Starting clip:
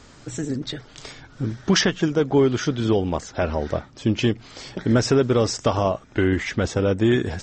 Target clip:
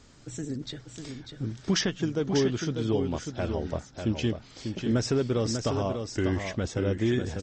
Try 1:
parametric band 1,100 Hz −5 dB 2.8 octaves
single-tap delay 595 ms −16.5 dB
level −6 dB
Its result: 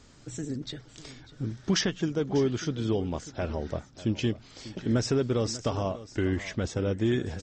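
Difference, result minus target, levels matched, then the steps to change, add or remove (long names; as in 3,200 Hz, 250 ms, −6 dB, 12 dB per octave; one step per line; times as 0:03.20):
echo-to-direct −10 dB
change: single-tap delay 595 ms −6.5 dB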